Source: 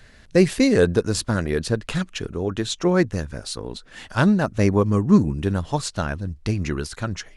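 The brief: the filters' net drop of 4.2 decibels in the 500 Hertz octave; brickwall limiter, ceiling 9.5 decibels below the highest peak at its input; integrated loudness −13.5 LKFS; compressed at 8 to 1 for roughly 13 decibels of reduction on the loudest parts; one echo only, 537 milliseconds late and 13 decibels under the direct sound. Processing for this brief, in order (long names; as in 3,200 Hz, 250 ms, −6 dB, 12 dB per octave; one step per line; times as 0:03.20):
parametric band 500 Hz −5.5 dB
downward compressor 8 to 1, threshold −24 dBFS
brickwall limiter −21.5 dBFS
single-tap delay 537 ms −13 dB
level +19 dB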